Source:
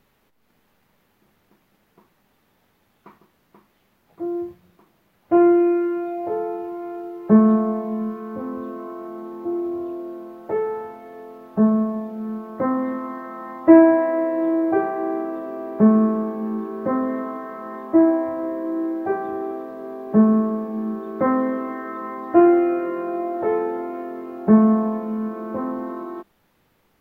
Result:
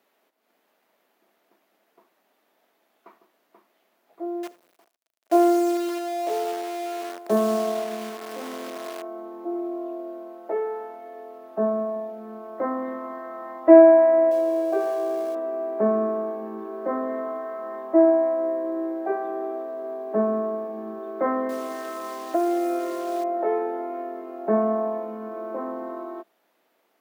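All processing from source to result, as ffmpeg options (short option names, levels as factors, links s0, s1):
-filter_complex "[0:a]asettb=1/sr,asplit=3[s0][s1][s2];[s0]atrim=end=4.434[s3];[s1]atrim=start=4.43:end=9.02,asetpts=PTS-STARTPTS,afade=t=in:d=0.004:c=qsin,afade=t=out:st=4.586:d=0.004:c=qsin,acrusher=bits=6:dc=4:mix=0:aa=0.000001,aecho=1:1:82:0.0891,atrim=end_sample=202419[s4];[s2]atrim=start=9.016[s5];[s3][s4]acrossfade=d=0.004:c1=hsin:c2=qsin[s6];[s6][s5]acrossfade=d=0.004:c1=qsin:c2=hsin,asettb=1/sr,asplit=3[s7][s8][s9];[s7]atrim=end=14.314[s10];[s8]atrim=start=14.31:end=15.35,asetpts=PTS-STARTPTS,afade=t=in:d=0.004:c=qsin,afade=t=out:st=1.036:d=0.004:c=qsin,aeval=exprs='val(0)+0.5*0.0251*sgn(val(0))':c=same,equalizer=f=1500:w=0.44:g=-6.5,aecho=1:1:1.8:0.47,atrim=end_sample=45864[s11];[s9]atrim=start=15.346[s12];[s10][s11]acrossfade=d=0.004:c1=hsin:c2=qsin[s13];[s13][s12]acrossfade=d=0.004:c1=qsin:c2=hsin,asettb=1/sr,asplit=3[s14][s15][s16];[s14]atrim=end=21.494[s17];[s15]atrim=start=21.49:end=23.24,asetpts=PTS-STARTPTS,afade=t=in:d=0.004:c=qsin,afade=t=out:st=1.746:d=0.004:c=qsin,acompressor=threshold=0.141:ratio=5:attack=3.2:release=140:knee=1:detection=peak,acrusher=bits=7:dc=4:mix=0:aa=0.000001[s18];[s16]atrim=start=23.236[s19];[s17][s18]acrossfade=d=0.004:c1=hsin:c2=qsin[s20];[s20][s19]acrossfade=d=0.004:c1=qsin:c2=hsin,highpass=f=280:w=0.5412,highpass=f=280:w=1.3066,equalizer=f=660:w=6.3:g=9.5,volume=0.631"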